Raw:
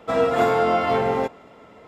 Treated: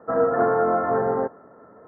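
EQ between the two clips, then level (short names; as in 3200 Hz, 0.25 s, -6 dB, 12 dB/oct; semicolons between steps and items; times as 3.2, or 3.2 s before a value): HPF 85 Hz; rippled Chebyshev low-pass 1800 Hz, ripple 3 dB; 0.0 dB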